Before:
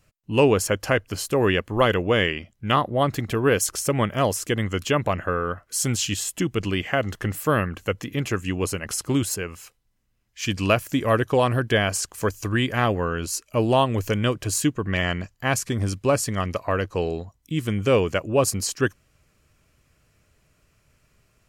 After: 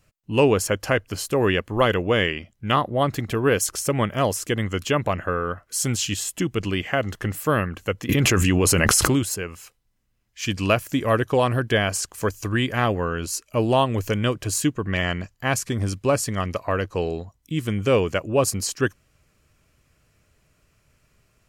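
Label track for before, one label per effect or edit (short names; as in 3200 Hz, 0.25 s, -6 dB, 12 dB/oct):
8.090000	9.190000	fast leveller amount 100%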